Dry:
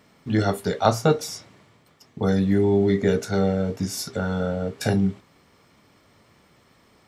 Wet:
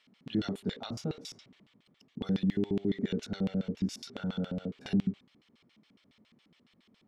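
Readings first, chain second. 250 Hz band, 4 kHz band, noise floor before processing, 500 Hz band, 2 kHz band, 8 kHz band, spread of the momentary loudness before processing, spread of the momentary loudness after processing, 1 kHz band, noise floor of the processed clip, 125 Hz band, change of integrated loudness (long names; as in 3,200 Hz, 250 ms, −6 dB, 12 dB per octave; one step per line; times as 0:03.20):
−8.0 dB, −9.0 dB, −59 dBFS, −16.5 dB, −15.0 dB, −16.5 dB, 8 LU, 12 LU, −21.5 dB, −70 dBFS, −11.0 dB, −11.0 dB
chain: brickwall limiter −15 dBFS, peak gain reduction 11 dB
auto-filter band-pass square 7.2 Hz 230–3,200 Hz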